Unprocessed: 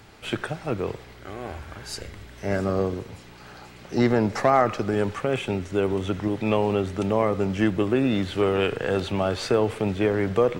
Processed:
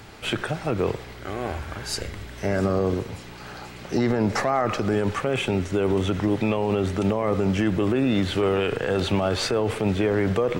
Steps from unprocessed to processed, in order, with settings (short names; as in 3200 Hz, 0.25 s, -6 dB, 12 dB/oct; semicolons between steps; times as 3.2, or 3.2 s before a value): limiter -19 dBFS, peak gain reduction 11 dB; gain +5.5 dB